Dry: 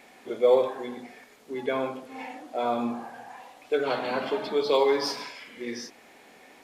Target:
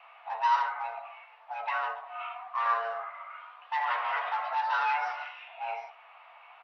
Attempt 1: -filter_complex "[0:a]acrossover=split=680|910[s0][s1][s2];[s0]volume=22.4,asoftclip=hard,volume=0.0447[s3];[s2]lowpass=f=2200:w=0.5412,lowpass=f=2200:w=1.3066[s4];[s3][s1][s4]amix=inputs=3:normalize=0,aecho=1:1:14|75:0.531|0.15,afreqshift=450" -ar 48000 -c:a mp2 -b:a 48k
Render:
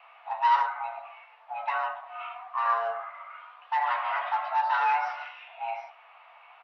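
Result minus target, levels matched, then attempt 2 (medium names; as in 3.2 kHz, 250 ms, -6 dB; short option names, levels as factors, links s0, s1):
overload inside the chain: distortion -4 dB
-filter_complex "[0:a]acrossover=split=680|910[s0][s1][s2];[s0]volume=47.3,asoftclip=hard,volume=0.0211[s3];[s2]lowpass=f=2200:w=0.5412,lowpass=f=2200:w=1.3066[s4];[s3][s1][s4]amix=inputs=3:normalize=0,aecho=1:1:14|75:0.531|0.15,afreqshift=450" -ar 48000 -c:a mp2 -b:a 48k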